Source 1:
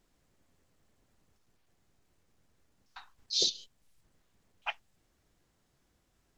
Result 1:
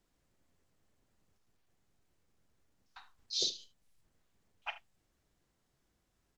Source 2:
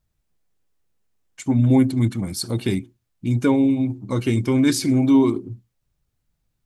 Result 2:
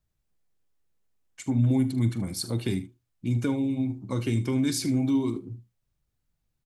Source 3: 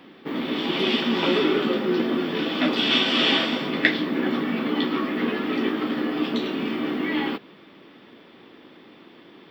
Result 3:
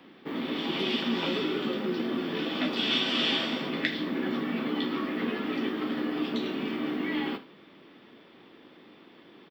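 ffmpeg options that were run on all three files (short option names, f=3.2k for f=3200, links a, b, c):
-filter_complex "[0:a]acrossover=split=230|3000[a][b][c];[b]acompressor=threshold=-24dB:ratio=6[d];[a][d][c]amix=inputs=3:normalize=0,asplit=2[e][f];[f]aecho=0:1:43|76:0.178|0.15[g];[e][g]amix=inputs=2:normalize=0,volume=-5dB"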